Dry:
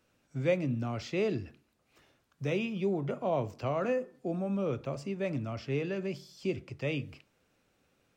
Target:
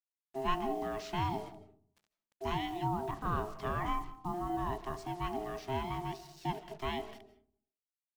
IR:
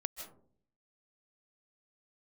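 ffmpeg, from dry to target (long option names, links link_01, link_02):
-filter_complex "[0:a]aeval=exprs='val(0)*sin(2*PI*530*n/s)':channel_layout=same,acrusher=bits=8:mix=0:aa=0.5,asplit=2[link_01][link_02];[1:a]atrim=start_sample=2205[link_03];[link_02][link_03]afir=irnorm=-1:irlink=0,volume=-5dB[link_04];[link_01][link_04]amix=inputs=2:normalize=0,volume=-4dB"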